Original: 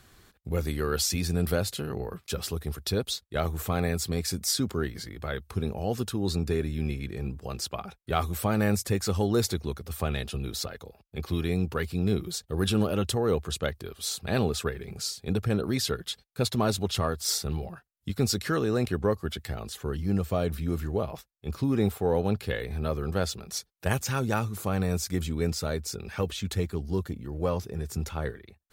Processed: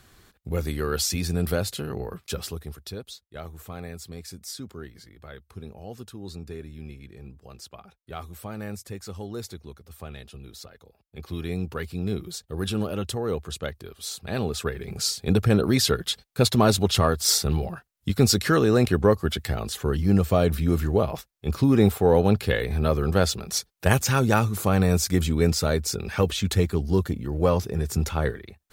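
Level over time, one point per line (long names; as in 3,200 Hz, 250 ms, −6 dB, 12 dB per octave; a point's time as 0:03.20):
0:02.32 +1.5 dB
0:03.05 −10 dB
0:10.73 −10 dB
0:11.52 −2 dB
0:14.37 −2 dB
0:15.07 +7 dB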